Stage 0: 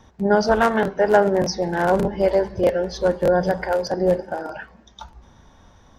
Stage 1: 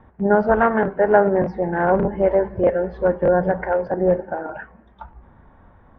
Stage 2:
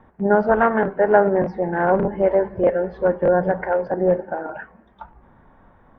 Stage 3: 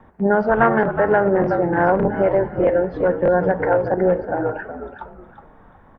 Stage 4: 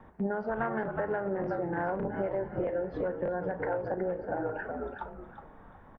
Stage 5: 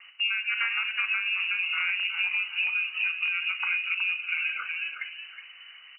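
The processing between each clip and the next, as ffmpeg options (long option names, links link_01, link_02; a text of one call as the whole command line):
ffmpeg -i in.wav -af "lowpass=frequency=2000:width=0.5412,lowpass=frequency=2000:width=1.3066,volume=1dB" out.wav
ffmpeg -i in.wav -af "equalizer=frequency=68:width=1.1:gain=-8.5" out.wav
ffmpeg -i in.wav -filter_complex "[0:a]asplit=4[link_01][link_02][link_03][link_04];[link_02]adelay=368,afreqshift=-60,volume=-10dB[link_05];[link_03]adelay=736,afreqshift=-120,volume=-20.2dB[link_06];[link_04]adelay=1104,afreqshift=-180,volume=-30.3dB[link_07];[link_01][link_05][link_06][link_07]amix=inputs=4:normalize=0,acrossover=split=120|1300[link_08][link_09][link_10];[link_09]alimiter=limit=-11.5dB:level=0:latency=1:release=121[link_11];[link_08][link_11][link_10]amix=inputs=3:normalize=0,volume=3dB" out.wav
ffmpeg -i in.wav -filter_complex "[0:a]acompressor=threshold=-25dB:ratio=6,asplit=2[link_01][link_02];[link_02]adelay=36,volume=-13.5dB[link_03];[link_01][link_03]amix=inputs=2:normalize=0,volume=-4.5dB" out.wav
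ffmpeg -i in.wav -af "lowpass=frequency=2600:width_type=q:width=0.5098,lowpass=frequency=2600:width_type=q:width=0.6013,lowpass=frequency=2600:width_type=q:width=0.9,lowpass=frequency=2600:width_type=q:width=2.563,afreqshift=-3000,volume=3.5dB" out.wav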